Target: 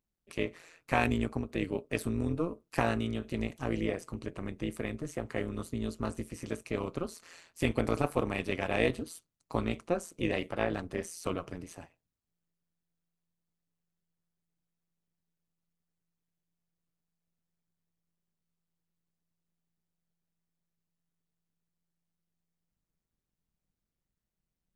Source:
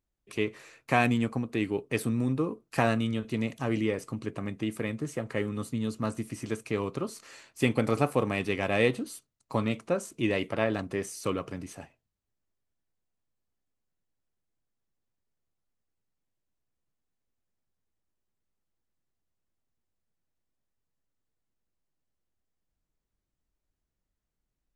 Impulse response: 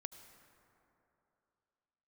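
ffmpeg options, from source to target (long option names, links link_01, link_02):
-af "tremolo=f=170:d=0.857"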